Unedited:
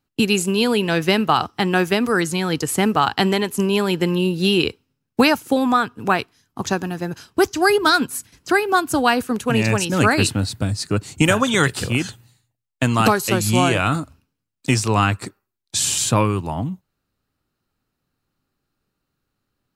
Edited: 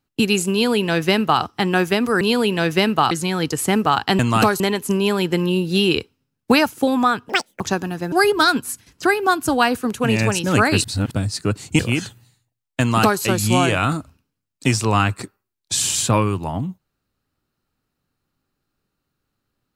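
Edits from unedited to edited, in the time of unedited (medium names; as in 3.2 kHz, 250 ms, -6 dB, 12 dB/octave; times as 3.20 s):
0.52–1.42 s: copy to 2.21 s
5.98–6.60 s: speed 199%
7.12–7.58 s: delete
10.30–10.57 s: reverse
11.25–11.82 s: delete
12.83–13.24 s: copy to 3.29 s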